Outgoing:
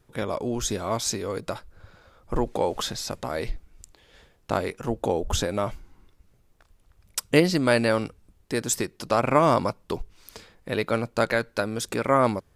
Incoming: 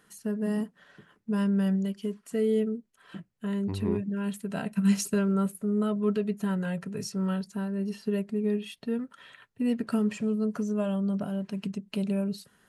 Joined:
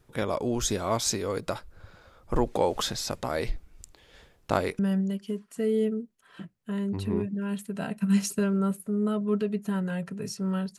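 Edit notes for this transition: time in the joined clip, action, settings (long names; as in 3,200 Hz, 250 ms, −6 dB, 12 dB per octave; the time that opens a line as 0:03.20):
outgoing
0:04.79: continue with incoming from 0:01.54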